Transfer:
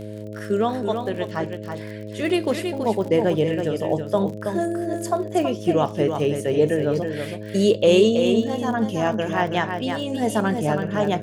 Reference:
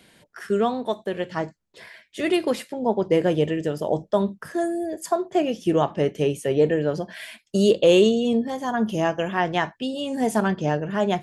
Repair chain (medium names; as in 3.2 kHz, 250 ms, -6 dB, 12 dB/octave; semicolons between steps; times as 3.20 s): de-click; de-hum 105.6 Hz, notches 6; inverse comb 326 ms -6.5 dB